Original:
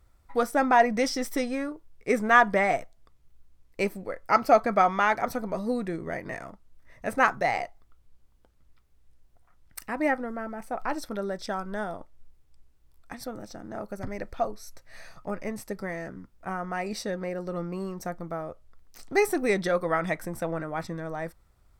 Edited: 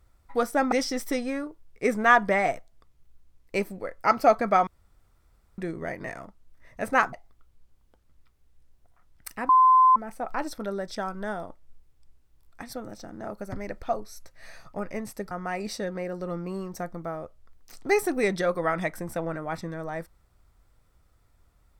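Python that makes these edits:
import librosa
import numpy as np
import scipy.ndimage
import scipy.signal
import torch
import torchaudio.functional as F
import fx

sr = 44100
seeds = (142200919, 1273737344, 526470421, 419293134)

y = fx.edit(x, sr, fx.cut(start_s=0.72, length_s=0.25),
    fx.room_tone_fill(start_s=4.92, length_s=0.91),
    fx.cut(start_s=7.38, length_s=0.26),
    fx.bleep(start_s=10.0, length_s=0.47, hz=1030.0, db=-13.5),
    fx.cut(start_s=15.82, length_s=0.75), tone=tone)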